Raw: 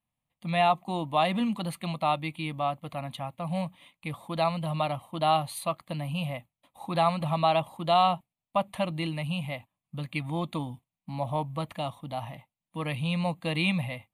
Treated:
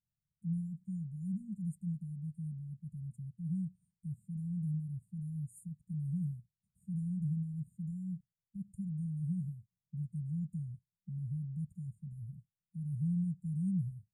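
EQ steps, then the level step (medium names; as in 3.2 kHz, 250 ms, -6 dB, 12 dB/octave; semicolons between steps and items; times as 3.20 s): brick-wall FIR band-stop 210–6800 Hz; tape spacing loss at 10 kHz 24 dB; treble shelf 3.8 kHz +9.5 dB; -2.5 dB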